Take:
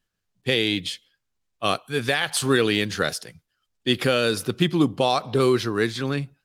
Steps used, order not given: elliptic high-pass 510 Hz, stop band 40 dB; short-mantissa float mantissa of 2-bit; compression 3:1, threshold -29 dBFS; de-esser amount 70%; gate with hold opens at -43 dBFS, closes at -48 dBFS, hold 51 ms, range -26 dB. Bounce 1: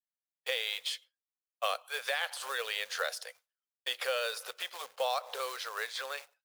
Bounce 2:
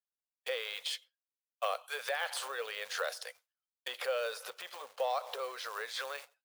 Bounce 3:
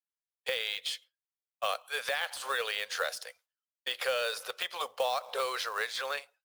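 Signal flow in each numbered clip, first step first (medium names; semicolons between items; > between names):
gate with hold > compression > de-esser > short-mantissa float > elliptic high-pass; short-mantissa float > de-esser > compression > gate with hold > elliptic high-pass; gate with hold > elliptic high-pass > compression > short-mantissa float > de-esser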